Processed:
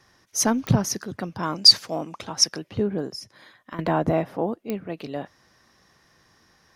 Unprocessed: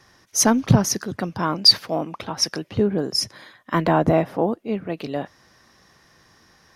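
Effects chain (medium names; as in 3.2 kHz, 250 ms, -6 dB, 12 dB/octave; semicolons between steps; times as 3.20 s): 1.43–2.44 s: peaking EQ 7.2 kHz +12 dB 0.97 oct; 3.08–3.79 s: compression 4:1, threshold -32 dBFS, peak gain reduction 14 dB; clicks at 0.67/4.70 s, -9 dBFS; trim -4.5 dB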